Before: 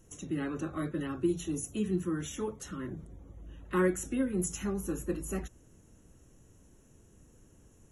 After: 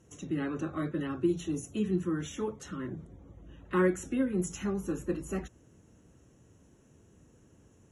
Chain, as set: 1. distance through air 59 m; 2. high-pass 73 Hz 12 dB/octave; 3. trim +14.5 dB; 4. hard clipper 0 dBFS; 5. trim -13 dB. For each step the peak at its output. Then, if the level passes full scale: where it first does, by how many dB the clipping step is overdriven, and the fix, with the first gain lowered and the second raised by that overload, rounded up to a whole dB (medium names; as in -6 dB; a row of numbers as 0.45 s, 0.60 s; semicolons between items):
-17.0 dBFS, -17.0 dBFS, -2.5 dBFS, -2.5 dBFS, -15.5 dBFS; nothing clips